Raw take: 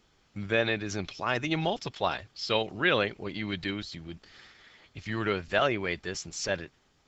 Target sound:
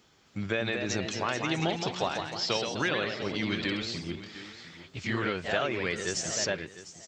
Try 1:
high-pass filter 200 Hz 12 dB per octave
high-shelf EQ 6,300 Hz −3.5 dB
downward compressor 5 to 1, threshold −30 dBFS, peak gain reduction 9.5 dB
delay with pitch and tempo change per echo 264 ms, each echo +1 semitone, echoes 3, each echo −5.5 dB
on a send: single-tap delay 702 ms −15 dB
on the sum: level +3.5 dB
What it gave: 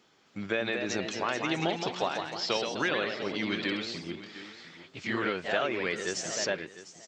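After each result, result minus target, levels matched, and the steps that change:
125 Hz band −5.5 dB; 8,000 Hz band −2.5 dB
change: high-pass filter 85 Hz 12 dB per octave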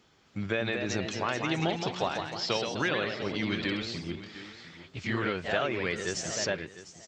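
8,000 Hz band −2.5 dB
change: high-shelf EQ 6,300 Hz +4 dB

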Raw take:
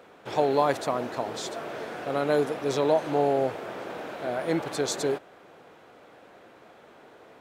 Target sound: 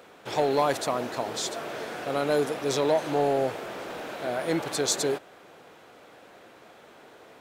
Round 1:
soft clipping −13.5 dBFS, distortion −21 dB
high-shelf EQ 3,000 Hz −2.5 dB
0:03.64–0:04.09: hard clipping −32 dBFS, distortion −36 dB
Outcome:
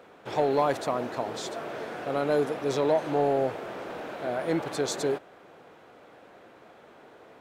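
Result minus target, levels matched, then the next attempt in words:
8,000 Hz band −7.5 dB
soft clipping −13.5 dBFS, distortion −21 dB
high-shelf EQ 3,000 Hz +7.5 dB
0:03.64–0:04.09: hard clipping −32 dBFS, distortion −34 dB

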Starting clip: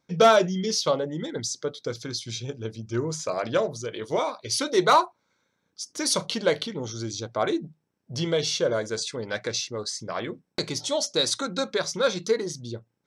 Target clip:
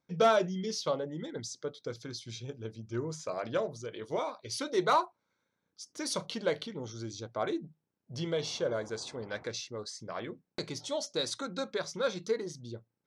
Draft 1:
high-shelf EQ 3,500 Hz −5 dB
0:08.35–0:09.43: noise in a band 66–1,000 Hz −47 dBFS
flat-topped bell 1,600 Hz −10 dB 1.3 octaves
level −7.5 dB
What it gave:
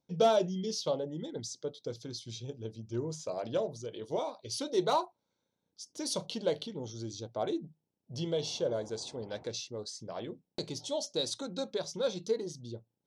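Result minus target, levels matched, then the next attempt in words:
2,000 Hz band −8.5 dB
high-shelf EQ 3,500 Hz −5 dB
0:08.35–0:09.43: noise in a band 66–1,000 Hz −47 dBFS
level −7.5 dB

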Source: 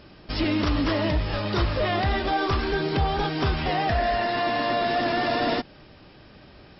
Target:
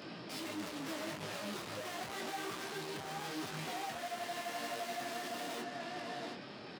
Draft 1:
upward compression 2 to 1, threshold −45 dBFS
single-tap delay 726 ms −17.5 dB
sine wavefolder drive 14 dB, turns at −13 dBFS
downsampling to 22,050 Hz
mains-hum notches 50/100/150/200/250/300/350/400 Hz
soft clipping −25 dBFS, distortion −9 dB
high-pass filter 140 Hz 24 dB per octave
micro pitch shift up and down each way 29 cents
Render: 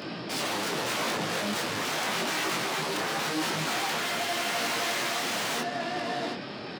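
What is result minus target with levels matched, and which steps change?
sine wavefolder: distortion +29 dB; soft clipping: distortion −5 dB
change: sine wavefolder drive 4 dB, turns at −13 dBFS
change: soft clipping −37 dBFS, distortion −4 dB

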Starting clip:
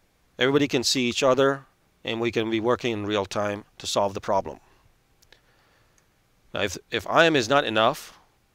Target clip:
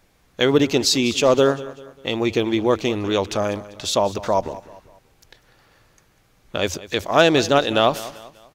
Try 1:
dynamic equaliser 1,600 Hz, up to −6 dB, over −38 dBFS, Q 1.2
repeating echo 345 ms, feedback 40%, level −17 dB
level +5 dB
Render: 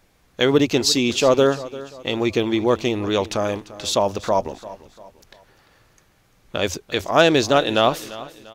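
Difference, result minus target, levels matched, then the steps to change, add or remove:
echo 149 ms late
change: repeating echo 196 ms, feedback 40%, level −17 dB

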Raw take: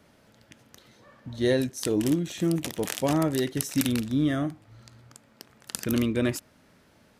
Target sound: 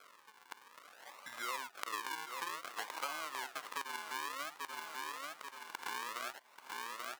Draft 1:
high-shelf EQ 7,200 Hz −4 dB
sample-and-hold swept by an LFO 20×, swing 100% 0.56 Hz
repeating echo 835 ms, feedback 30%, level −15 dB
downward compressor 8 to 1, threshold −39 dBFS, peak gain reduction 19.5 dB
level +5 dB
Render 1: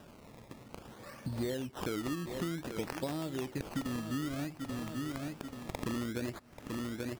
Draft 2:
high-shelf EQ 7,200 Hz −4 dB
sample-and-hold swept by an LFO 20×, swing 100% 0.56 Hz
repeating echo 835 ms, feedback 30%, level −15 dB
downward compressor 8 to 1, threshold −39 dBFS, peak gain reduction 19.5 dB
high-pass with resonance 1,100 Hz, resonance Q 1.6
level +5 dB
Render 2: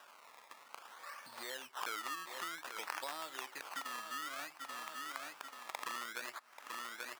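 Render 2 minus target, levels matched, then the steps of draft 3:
sample-and-hold swept by an LFO: distortion −10 dB
high-shelf EQ 7,200 Hz −4 dB
sample-and-hold swept by an LFO 47×, swing 100% 0.56 Hz
repeating echo 835 ms, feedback 30%, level −15 dB
downward compressor 8 to 1, threshold −39 dBFS, peak gain reduction 21.5 dB
high-pass with resonance 1,100 Hz, resonance Q 1.6
level +5 dB

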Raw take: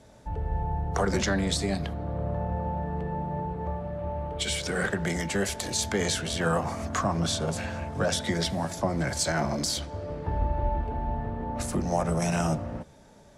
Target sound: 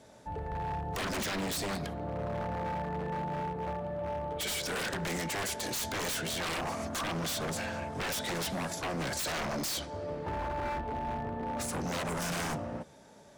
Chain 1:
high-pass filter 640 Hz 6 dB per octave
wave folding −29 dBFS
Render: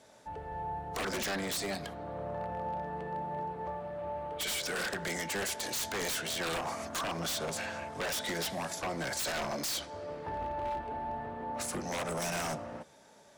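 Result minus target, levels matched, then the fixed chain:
250 Hz band −3.0 dB
high-pass filter 210 Hz 6 dB per octave
wave folding −29 dBFS

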